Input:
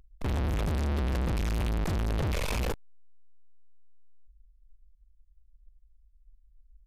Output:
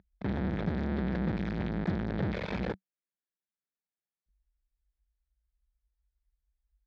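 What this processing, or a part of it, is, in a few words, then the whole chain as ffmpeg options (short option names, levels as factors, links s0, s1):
guitar cabinet: -af "highpass=100,equalizer=f=190:t=q:w=4:g=10,equalizer=f=340:t=q:w=4:g=3,equalizer=f=1100:t=q:w=4:g=-6,equalizer=f=1700:t=q:w=4:g=4,equalizer=f=2800:t=q:w=4:g=-10,lowpass=f=3700:w=0.5412,lowpass=f=3700:w=1.3066,volume=0.841"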